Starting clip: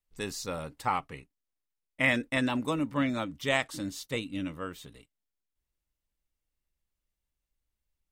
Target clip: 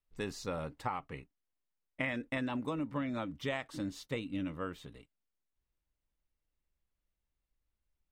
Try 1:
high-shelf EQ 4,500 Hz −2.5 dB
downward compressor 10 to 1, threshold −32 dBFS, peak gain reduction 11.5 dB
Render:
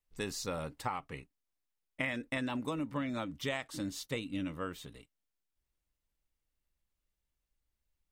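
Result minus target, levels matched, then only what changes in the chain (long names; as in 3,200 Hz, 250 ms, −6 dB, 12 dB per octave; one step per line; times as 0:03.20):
8,000 Hz band +7.0 dB
change: high-shelf EQ 4,500 Hz −13.5 dB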